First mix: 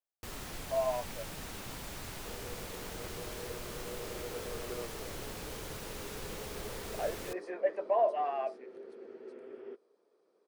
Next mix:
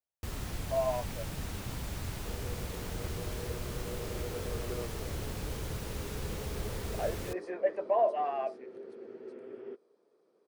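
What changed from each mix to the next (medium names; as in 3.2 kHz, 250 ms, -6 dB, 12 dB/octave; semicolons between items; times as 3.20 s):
master: add peaking EQ 70 Hz +12 dB 2.9 oct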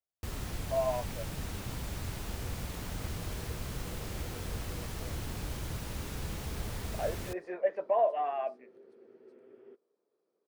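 second sound -10.5 dB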